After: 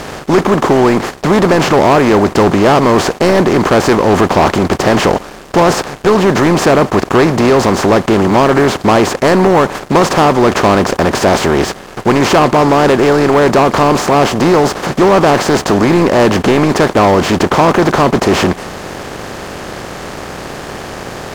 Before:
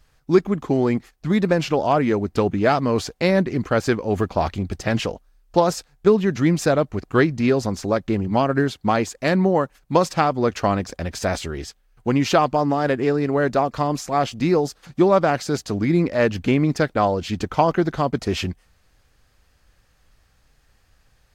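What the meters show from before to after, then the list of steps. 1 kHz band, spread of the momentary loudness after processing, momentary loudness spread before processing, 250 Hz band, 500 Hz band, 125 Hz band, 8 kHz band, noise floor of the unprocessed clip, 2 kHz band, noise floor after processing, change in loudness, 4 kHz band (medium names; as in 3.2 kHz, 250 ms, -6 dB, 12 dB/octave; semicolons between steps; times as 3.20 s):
+12.0 dB, 16 LU, 7 LU, +10.0 dB, +10.5 dB, +8.5 dB, +13.0 dB, -61 dBFS, +12.0 dB, -30 dBFS, +10.5 dB, +13.0 dB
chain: spectral levelling over time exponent 0.4; dynamic bell 1 kHz, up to +4 dB, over -27 dBFS, Q 1.8; waveshaping leveller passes 3; trim -5.5 dB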